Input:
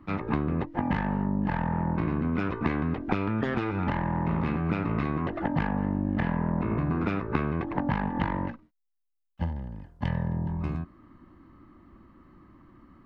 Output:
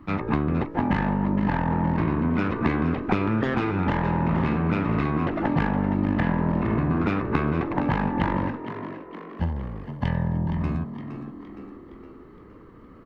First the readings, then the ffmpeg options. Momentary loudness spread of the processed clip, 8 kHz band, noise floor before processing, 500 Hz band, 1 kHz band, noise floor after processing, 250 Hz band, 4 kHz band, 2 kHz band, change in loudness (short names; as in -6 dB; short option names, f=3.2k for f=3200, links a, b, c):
12 LU, n/a, -75 dBFS, +5.0 dB, +4.5 dB, -47 dBFS, +4.5 dB, +5.0 dB, +4.5 dB, +4.0 dB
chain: -filter_complex "[0:a]asplit=2[a][b];[b]asoftclip=type=tanh:threshold=-29dB,volume=-10dB[c];[a][c]amix=inputs=2:normalize=0,asplit=7[d][e][f][g][h][i][j];[e]adelay=465,afreqshift=61,volume=-10.5dB[k];[f]adelay=930,afreqshift=122,volume=-16.3dB[l];[g]adelay=1395,afreqshift=183,volume=-22.2dB[m];[h]adelay=1860,afreqshift=244,volume=-28dB[n];[i]adelay=2325,afreqshift=305,volume=-33.9dB[o];[j]adelay=2790,afreqshift=366,volume=-39.7dB[p];[d][k][l][m][n][o][p]amix=inputs=7:normalize=0,volume=2.5dB"